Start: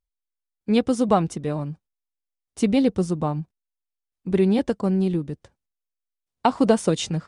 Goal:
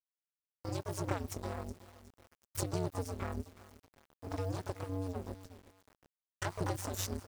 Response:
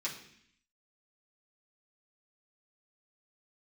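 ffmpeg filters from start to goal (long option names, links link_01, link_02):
-filter_complex "[0:a]asplit=2[link_01][link_02];[link_02]asetrate=88200,aresample=44100,atempo=0.5,volume=-6dB[link_03];[link_01][link_03]amix=inputs=2:normalize=0,acompressor=threshold=-30dB:ratio=3,highshelf=frequency=3900:width_type=q:width=1.5:gain=7.5,asplit=2[link_04][link_05];[link_05]aecho=0:1:370|740|1110:0.133|0.0387|0.0112[link_06];[link_04][link_06]amix=inputs=2:normalize=0,aphaser=in_gain=1:out_gain=1:delay=4.1:decay=0.26:speed=0.9:type=triangular,aeval=exprs='max(val(0),0)':channel_layout=same,acrusher=bits=8:mix=0:aa=0.000001,aeval=exprs='val(0)*sin(2*PI*95*n/s)':channel_layout=same,volume=-2dB"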